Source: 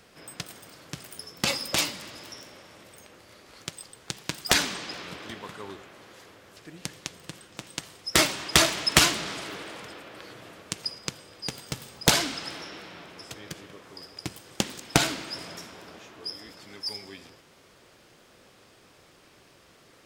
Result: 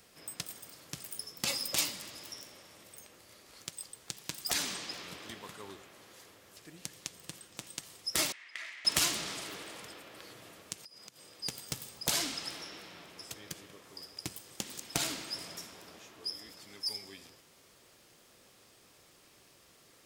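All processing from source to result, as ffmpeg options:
-filter_complex "[0:a]asettb=1/sr,asplit=3[a][b][c];[a]atrim=end=8.324[d];[b]atrim=start=8.32:end=8.85,asetpts=PTS-STARTPTS,afade=t=in:d=0.004:c=qsin,afade=t=out:st=0.526:d=0.004:c=qsin,bandpass=f=2k:t=q:w=5.3,acompressor=threshold=-32dB:ratio=5:attack=3.2:release=140:knee=1:detection=peak[e];[c]atrim=start=8.846[f];[d][e]acrossfade=d=0.004:c1=hsin:c2=qsin[g];[g][f]acrossfade=d=0.004:c1=qsin:c2=hsin,asettb=1/sr,asplit=3[h][i][j];[h]atrim=end=10.844[k];[i]atrim=start=10.84:end=11.41,asetpts=PTS-STARTPTS,afade=t=in:d=0.004:c=qsin,afade=t=out:st=0.566:d=0.004:c=qsin,highpass=120,acompressor=threshold=-45dB:ratio=16:attack=3.2:release=140:knee=1:detection=peak[l];[j]atrim=start=11.406[m];[k][l]acrossfade=d=0.004:c1=hsin:c2=qsin[n];[n][m]acrossfade=d=0.004:c1=qsin:c2=hsin,highshelf=f=5.7k:g=12,alimiter=limit=-5.5dB:level=0:latency=1:release=165,bandreject=f=1.5k:w=24,volume=-7.5dB"

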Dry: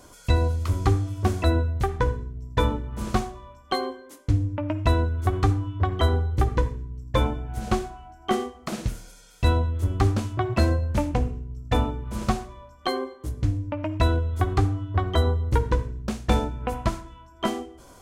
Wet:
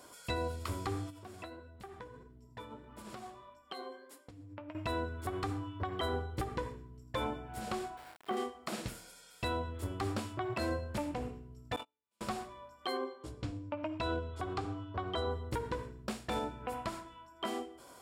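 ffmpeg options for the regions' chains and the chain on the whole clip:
-filter_complex "[0:a]asettb=1/sr,asplit=3[a][b][c];[a]atrim=end=1.104[d];[b]atrim=start=1.1:end=4.75,asetpts=PTS-STARTPTS,afade=t=in:d=0.004:c=qsin,afade=t=out:st=3.646:d=0.004:c=qsin,acompressor=threshold=-30dB:ratio=12:attack=3.2:release=140:knee=1:detection=peak,flanger=delay=3.2:depth=6.6:regen=55:speed=1.6:shape=sinusoidal[e];[c]atrim=start=4.746[f];[d][e]acrossfade=d=0.004:c1=hsin:c2=qsin[g];[g][f]acrossfade=d=0.004:c1=qsin:c2=hsin,asettb=1/sr,asplit=3[h][i][j];[h]atrim=end=7.974[k];[i]atrim=start=7.97:end=8.37,asetpts=PTS-STARTPTS,afade=t=in:d=0.004:c=qsin,afade=t=out:st=0.396:d=0.004:c=qsin,lowpass=f=1.5k:p=1,aeval=exprs='val(0)*gte(abs(val(0)),0.00708)':c=same[l];[j]atrim=start=8.366[m];[k][l]acrossfade=d=0.004:c1=hsin:c2=qsin[n];[n][m]acrossfade=d=0.004:c1=qsin:c2=hsin,asettb=1/sr,asplit=3[o][p][q];[o]atrim=end=11.764[r];[p]atrim=start=11.76:end=12.21,asetpts=PTS-STARTPTS,afade=t=in:d=0.004:c=qsin,afade=t=out:st=0.446:d=0.004:c=qsin,highshelf=f=2k:t=q:w=1.5:g=6,agate=range=-43dB:threshold=-20dB:ratio=16:release=100:detection=peak,highpass=f=760:p=1[s];[q]atrim=start=12.206[t];[r][s]acrossfade=d=0.004:c1=hsin:c2=qsin[u];[u][t]acrossfade=d=0.004:c1=qsin:c2=hsin,asettb=1/sr,asplit=3[v][w][x];[v]atrim=end=12.974[y];[w]atrim=start=12.97:end=15.31,asetpts=PTS-STARTPTS,afade=t=in:d=0.004:c=qsin,afade=t=out:st=2.336:d=0.004:c=qsin,lowpass=6.6k,equalizer=f=1.9k:w=4.6:g=-6,bandreject=f=50:t=h:w=6,bandreject=f=100:t=h:w=6,bandreject=f=150:t=h:w=6,bandreject=f=200:t=h:w=6,bandreject=f=250:t=h:w=6,bandreject=f=300:t=h:w=6,bandreject=f=350:t=h:w=6,bandreject=f=400:t=h:w=6[z];[x]atrim=start=15.306[aa];[y][z]acrossfade=d=0.004:c1=hsin:c2=qsin[ab];[ab][aa]acrossfade=d=0.004:c1=qsin:c2=hsin,highpass=f=380:p=1,bandreject=f=6.2k:w=7.1,alimiter=limit=-21.5dB:level=0:latency=1:release=112,volume=-3dB"

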